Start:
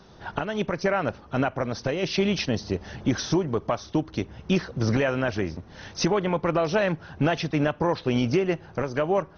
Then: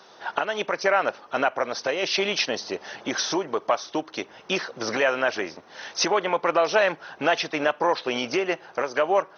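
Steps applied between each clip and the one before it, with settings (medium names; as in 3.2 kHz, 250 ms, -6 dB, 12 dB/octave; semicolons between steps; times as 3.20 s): high-pass 550 Hz 12 dB/octave; trim +5.5 dB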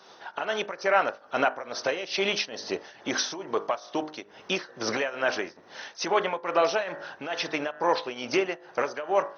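de-hum 51.3 Hz, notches 38; tremolo triangle 2.3 Hz, depth 85%; trim +1 dB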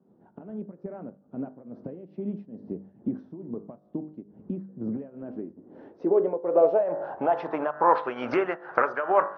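recorder AGC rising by 16 dB/s; de-hum 48.37 Hz, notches 4; low-pass sweep 210 Hz -> 1.4 kHz, 5.19–8.11 s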